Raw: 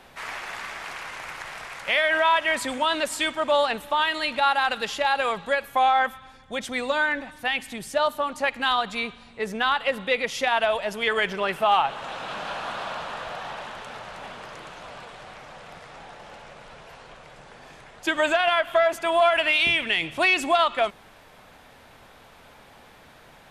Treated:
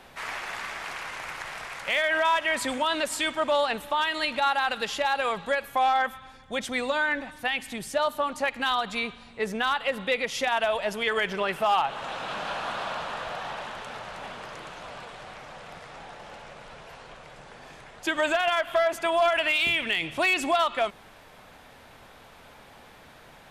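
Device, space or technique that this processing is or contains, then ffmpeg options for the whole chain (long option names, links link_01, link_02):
clipper into limiter: -af "asoftclip=type=hard:threshold=-13.5dB,alimiter=limit=-16.5dB:level=0:latency=1:release=114"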